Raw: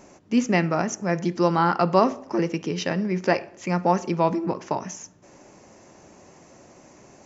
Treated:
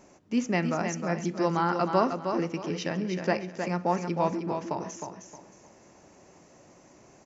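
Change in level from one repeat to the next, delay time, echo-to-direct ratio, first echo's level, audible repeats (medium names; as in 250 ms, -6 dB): -11.0 dB, 312 ms, -6.0 dB, -6.5 dB, 3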